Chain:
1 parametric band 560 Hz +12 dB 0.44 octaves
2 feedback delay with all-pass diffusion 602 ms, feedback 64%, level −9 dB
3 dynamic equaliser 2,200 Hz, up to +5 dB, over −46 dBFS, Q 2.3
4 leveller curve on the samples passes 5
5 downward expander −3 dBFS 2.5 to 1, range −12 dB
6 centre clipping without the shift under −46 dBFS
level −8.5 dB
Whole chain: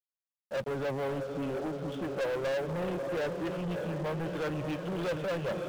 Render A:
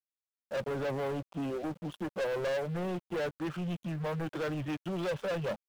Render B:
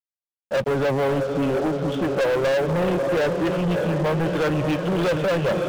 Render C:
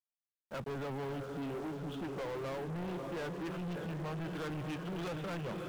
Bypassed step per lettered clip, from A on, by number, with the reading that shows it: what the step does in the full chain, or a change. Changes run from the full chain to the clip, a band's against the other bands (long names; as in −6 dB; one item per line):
2, change in momentary loudness spread +1 LU
5, change in crest factor −1.5 dB
1, 500 Hz band −4.5 dB